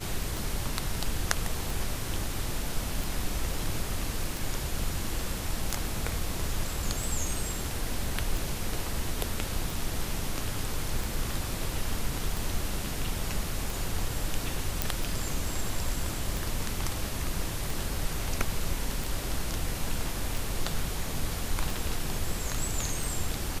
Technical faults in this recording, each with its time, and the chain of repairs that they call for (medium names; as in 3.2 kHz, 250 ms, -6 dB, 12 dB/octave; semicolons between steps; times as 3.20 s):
tick 45 rpm
14.82 s: pop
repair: de-click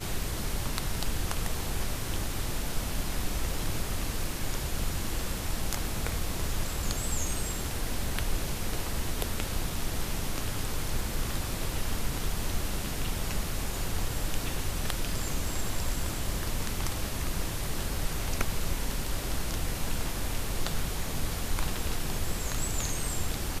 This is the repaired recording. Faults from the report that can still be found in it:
nothing left